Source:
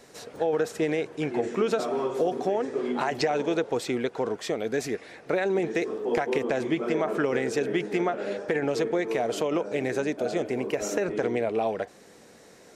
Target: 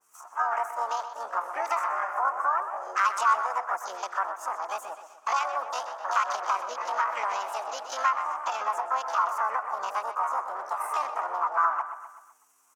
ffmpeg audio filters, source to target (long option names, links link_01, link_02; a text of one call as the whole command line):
ffmpeg -i in.wav -filter_complex "[0:a]afwtdn=0.02,asplit=4[link_01][link_02][link_03][link_04];[link_02]asetrate=22050,aresample=44100,atempo=2,volume=-16dB[link_05];[link_03]asetrate=55563,aresample=44100,atempo=0.793701,volume=-7dB[link_06];[link_04]asetrate=58866,aresample=44100,atempo=0.749154,volume=-8dB[link_07];[link_01][link_05][link_06][link_07]amix=inputs=4:normalize=0,aeval=exprs='val(0)+0.002*(sin(2*PI*60*n/s)+sin(2*PI*2*60*n/s)/2+sin(2*PI*3*60*n/s)/3+sin(2*PI*4*60*n/s)/4+sin(2*PI*5*60*n/s)/5)':channel_layout=same,asetrate=66075,aresample=44100,atempo=0.66742,highpass=frequency=1200:width_type=q:width=3.5,highshelf=frequency=5000:width_type=q:width=3:gain=9.5,asplit=2[link_08][link_09];[link_09]adelay=126,lowpass=frequency=4900:poles=1,volume=-10dB,asplit=2[link_10][link_11];[link_11]adelay=126,lowpass=frequency=4900:poles=1,volume=0.49,asplit=2[link_12][link_13];[link_13]adelay=126,lowpass=frequency=4900:poles=1,volume=0.49,asplit=2[link_14][link_15];[link_15]adelay=126,lowpass=frequency=4900:poles=1,volume=0.49,asplit=2[link_16][link_17];[link_17]adelay=126,lowpass=frequency=4900:poles=1,volume=0.49[link_18];[link_08][link_10][link_12][link_14][link_16][link_18]amix=inputs=6:normalize=0,adynamicequalizer=threshold=0.0178:dfrequency=1900:dqfactor=0.7:tfrequency=1900:tqfactor=0.7:attack=5:release=100:ratio=0.375:range=3:mode=cutabove:tftype=highshelf,volume=-3dB" out.wav